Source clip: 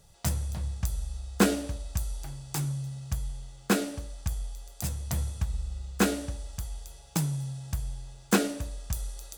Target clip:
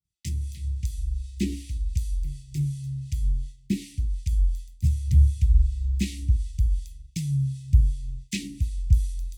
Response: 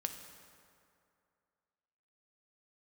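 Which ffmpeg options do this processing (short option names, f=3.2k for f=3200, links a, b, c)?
-filter_complex "[0:a]acrossover=split=1100[a][b];[a]aeval=exprs='val(0)*(1-0.7/2+0.7/2*cos(2*PI*2.7*n/s))':c=same[c];[b]aeval=exprs='val(0)*(1-0.7/2-0.7/2*cos(2*PI*2.7*n/s))':c=same[d];[c][d]amix=inputs=2:normalize=0,acrossover=split=8100[e][f];[f]acompressor=threshold=-50dB:ratio=4:attack=1:release=60[g];[e][g]amix=inputs=2:normalize=0,agate=range=-33dB:threshold=-45dB:ratio=3:detection=peak,asuperstop=centerf=860:order=20:qfactor=0.54,asubboost=boost=11:cutoff=100,highpass=47"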